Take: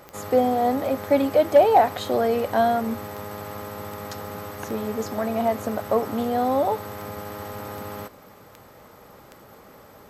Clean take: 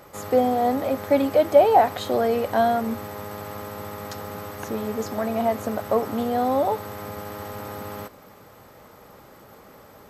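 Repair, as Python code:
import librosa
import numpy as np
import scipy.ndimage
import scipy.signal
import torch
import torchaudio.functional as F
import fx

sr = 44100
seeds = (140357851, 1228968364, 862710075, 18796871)

y = fx.fix_declip(x, sr, threshold_db=-7.5)
y = fx.fix_declick_ar(y, sr, threshold=10.0)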